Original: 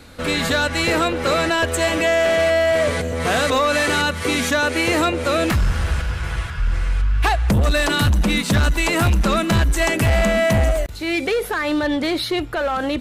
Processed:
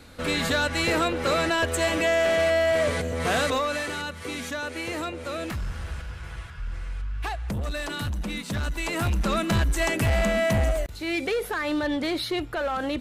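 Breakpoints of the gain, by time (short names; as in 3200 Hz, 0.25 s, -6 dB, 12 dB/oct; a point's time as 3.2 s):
3.41 s -5 dB
3.94 s -13 dB
8.46 s -13 dB
9.41 s -6 dB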